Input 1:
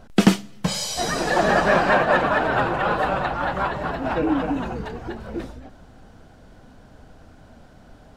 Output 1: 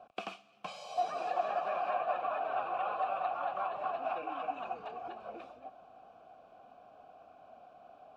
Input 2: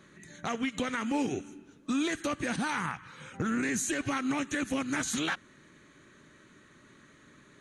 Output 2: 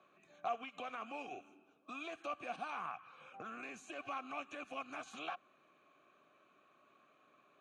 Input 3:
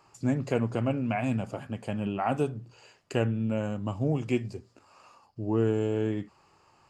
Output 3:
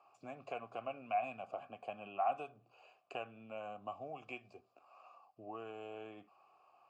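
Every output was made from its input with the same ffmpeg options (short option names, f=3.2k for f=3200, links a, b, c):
-filter_complex "[0:a]acrossover=split=85|1100[a][b][c];[a]acompressor=threshold=-47dB:ratio=4[d];[b]acompressor=threshold=-34dB:ratio=4[e];[c]acompressor=threshold=-33dB:ratio=4[f];[d][e][f]amix=inputs=3:normalize=0,asplit=3[g][h][i];[g]bandpass=f=730:t=q:w=8,volume=0dB[j];[h]bandpass=f=1.09k:t=q:w=8,volume=-6dB[k];[i]bandpass=f=2.44k:t=q:w=8,volume=-9dB[l];[j][k][l]amix=inputs=3:normalize=0,volume=4.5dB"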